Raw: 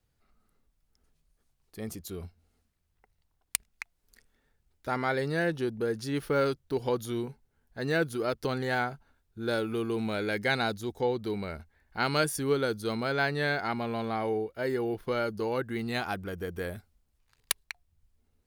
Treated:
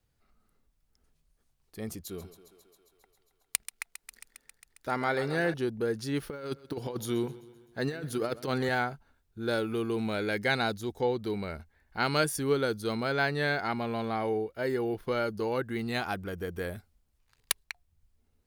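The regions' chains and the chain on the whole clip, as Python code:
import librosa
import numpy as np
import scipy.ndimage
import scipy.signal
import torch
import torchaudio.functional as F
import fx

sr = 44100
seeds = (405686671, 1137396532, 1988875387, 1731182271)

y = fx.chain(x, sr, fx.peak_eq(hz=63.0, db=-9.0, octaves=1.3),
    fx.echo_thinned(ms=135, feedback_pct=78, hz=220.0, wet_db=-13), at=(2.03, 5.54))
y = fx.chain(y, sr, fx.highpass(hz=100.0, slope=12),
    fx.over_compress(threshold_db=-31.0, ratio=-0.5),
    fx.echo_feedback(ms=129, feedback_pct=56, wet_db=-18.5), at=(6.3, 8.69))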